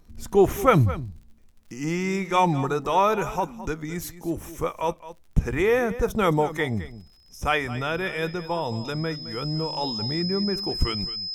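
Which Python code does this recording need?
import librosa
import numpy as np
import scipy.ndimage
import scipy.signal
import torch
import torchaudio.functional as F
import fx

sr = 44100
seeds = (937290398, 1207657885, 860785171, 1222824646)

y = fx.fix_declick_ar(x, sr, threshold=6.5)
y = fx.notch(y, sr, hz=5100.0, q=30.0)
y = fx.fix_echo_inverse(y, sr, delay_ms=215, level_db=-15.0)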